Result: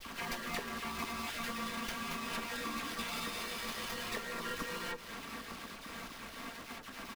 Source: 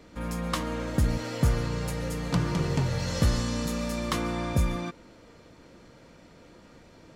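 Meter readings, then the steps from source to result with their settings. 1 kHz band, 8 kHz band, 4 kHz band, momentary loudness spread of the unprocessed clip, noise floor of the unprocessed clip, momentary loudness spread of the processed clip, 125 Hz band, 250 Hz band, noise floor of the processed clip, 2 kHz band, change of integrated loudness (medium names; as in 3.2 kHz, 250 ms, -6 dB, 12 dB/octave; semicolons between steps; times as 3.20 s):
-4.0 dB, -5.5 dB, -2.5 dB, 6 LU, -54 dBFS, 7 LU, -25.0 dB, -13.5 dB, -50 dBFS, -0.5 dB, -11.0 dB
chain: random holes in the spectrogram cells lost 29%; steep high-pass 330 Hz 72 dB/octave; peaking EQ 550 Hz -11 dB 0.53 oct; comb 4.4 ms, depth 83%; dynamic bell 910 Hz, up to -6 dB, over -52 dBFS, Q 1.7; compression 12:1, threshold -46 dBFS, peak gain reduction 19.5 dB; companded quantiser 4-bit; ring modulator 690 Hz; phase dispersion lows, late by 54 ms, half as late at 2.1 kHz; on a send: delay 239 ms -13.5 dB; on the sum: sliding maximum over 5 samples; trim +13 dB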